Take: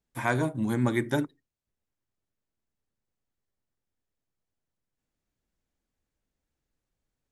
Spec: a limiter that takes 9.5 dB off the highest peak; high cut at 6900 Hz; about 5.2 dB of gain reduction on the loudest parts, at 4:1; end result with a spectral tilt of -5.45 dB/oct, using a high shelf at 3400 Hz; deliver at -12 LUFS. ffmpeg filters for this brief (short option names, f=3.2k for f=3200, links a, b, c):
-af "lowpass=6.9k,highshelf=f=3.4k:g=-4.5,acompressor=threshold=-27dB:ratio=4,volume=23dB,alimiter=limit=-1.5dB:level=0:latency=1"